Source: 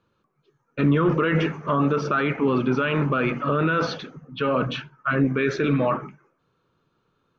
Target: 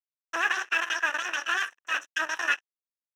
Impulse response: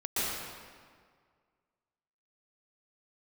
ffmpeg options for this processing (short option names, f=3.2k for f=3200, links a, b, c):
-filter_complex "[0:a]equalizer=f=730:w=1.8:g=10.5,asplit=2[a][b];[b]acrusher=samples=39:mix=1:aa=0.000001:lfo=1:lforange=39:lforate=0.74,volume=-5.5dB[c];[a][c]amix=inputs=2:normalize=0,aeval=exprs='sgn(val(0))*max(abs(val(0))-0.0282,0)':c=same,aeval=exprs='0.668*(cos(1*acos(clip(val(0)/0.668,-1,1)))-cos(1*PI/2))+0.266*(cos(4*acos(clip(val(0)/0.668,-1,1)))-cos(4*PI/2))':c=same,asplit=3[d][e][f];[d]bandpass=f=730:t=q:w=8,volume=0dB[g];[e]bandpass=f=1.09k:t=q:w=8,volume=-6dB[h];[f]bandpass=f=2.44k:t=q:w=8,volume=-9dB[i];[g][h][i]amix=inputs=3:normalize=0,acrusher=bits=9:mode=log:mix=0:aa=0.000001,asetrate=103194,aresample=44100"